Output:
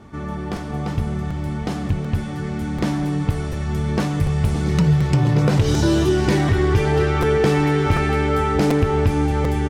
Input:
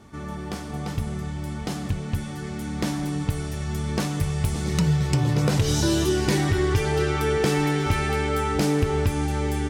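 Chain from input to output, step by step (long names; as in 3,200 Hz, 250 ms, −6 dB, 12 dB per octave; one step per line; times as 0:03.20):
high-shelf EQ 4,100 Hz −11.5 dB
in parallel at −8.5 dB: soft clipping −20.5 dBFS, distortion −13 dB
on the sum: single-tap delay 482 ms −14.5 dB
regular buffer underruns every 0.74 s, samples 256, repeat, from 0:00.56
level +3 dB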